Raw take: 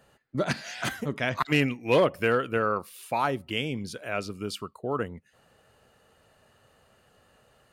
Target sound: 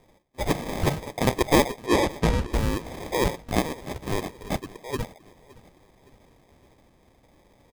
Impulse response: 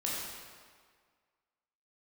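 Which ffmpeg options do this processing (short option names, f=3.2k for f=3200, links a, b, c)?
-filter_complex "[0:a]highpass=1.4k,aecho=1:1:2:0.57,acrusher=samples=31:mix=1:aa=0.000001,asettb=1/sr,asplit=3[a][b][c];[a]atrim=end=1.864[d];[b]atrim=start=1.86:end=2.5,asetpts=PTS-STARTPTS,afade=t=in:d=0.004:c=qsin,afade=t=out:st=0.636:d=0.004:c=qsin,adynamicsmooth=sensitivity=6:basefreq=6.8k[e];[c]atrim=start=2.496[f];[d][e]acrossfade=d=0.004:c1=hsin:c2=qsin[g];[g][f]acrossfade=d=0.004:c1=qsin:c2=hsin,aecho=1:1:566|1132|1698:0.0794|0.0389|0.0191,volume=9dB"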